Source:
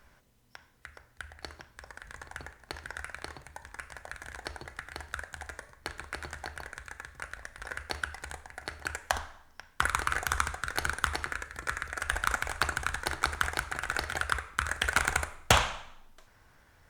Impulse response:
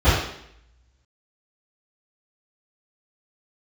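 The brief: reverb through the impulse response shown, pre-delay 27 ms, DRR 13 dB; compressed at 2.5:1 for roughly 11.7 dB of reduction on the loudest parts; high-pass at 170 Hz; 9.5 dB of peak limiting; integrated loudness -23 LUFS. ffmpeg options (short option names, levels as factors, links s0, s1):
-filter_complex "[0:a]highpass=170,acompressor=threshold=0.01:ratio=2.5,alimiter=level_in=1.26:limit=0.0631:level=0:latency=1,volume=0.794,asplit=2[s0][s1];[1:a]atrim=start_sample=2205,adelay=27[s2];[s1][s2]afir=irnorm=-1:irlink=0,volume=0.0178[s3];[s0][s3]amix=inputs=2:normalize=0,volume=13.3"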